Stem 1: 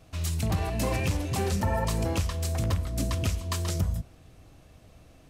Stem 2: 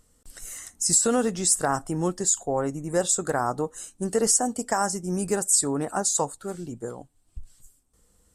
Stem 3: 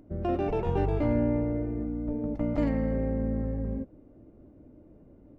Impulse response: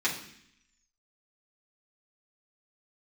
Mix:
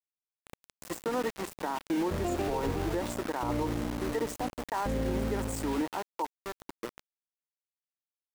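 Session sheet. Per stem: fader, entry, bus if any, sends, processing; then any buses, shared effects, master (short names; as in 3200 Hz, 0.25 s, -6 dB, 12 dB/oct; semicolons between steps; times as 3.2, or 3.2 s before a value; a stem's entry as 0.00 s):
-1.0 dB, 0.00 s, no send, tube stage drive 37 dB, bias 0.8; tilt -1.5 dB/oct; FFT band-pass 140–2300 Hz
-13.5 dB, 0.00 s, no send, three-band isolator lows -20 dB, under 320 Hz, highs -18 dB, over 2900 Hz; AGC gain up to 8 dB; small resonant body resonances 310/920/1900 Hz, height 15 dB, ringing for 45 ms
+2.5 dB, 2.00 s, no send, tremolo saw down 0.7 Hz, depth 100%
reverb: off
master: sample gate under -32 dBFS; limiter -22.5 dBFS, peak gain reduction 10.5 dB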